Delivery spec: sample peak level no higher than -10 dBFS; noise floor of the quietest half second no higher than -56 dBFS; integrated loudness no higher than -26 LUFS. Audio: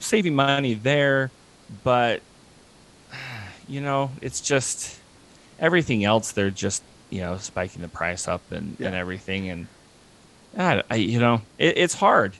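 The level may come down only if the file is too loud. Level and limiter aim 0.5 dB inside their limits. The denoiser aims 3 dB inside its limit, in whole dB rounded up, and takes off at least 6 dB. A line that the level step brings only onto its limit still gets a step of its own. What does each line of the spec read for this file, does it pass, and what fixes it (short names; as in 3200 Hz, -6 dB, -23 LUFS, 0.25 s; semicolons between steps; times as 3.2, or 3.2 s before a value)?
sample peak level -4.0 dBFS: fail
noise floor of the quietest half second -53 dBFS: fail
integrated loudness -23.5 LUFS: fail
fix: denoiser 6 dB, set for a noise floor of -53 dBFS; gain -3 dB; limiter -10.5 dBFS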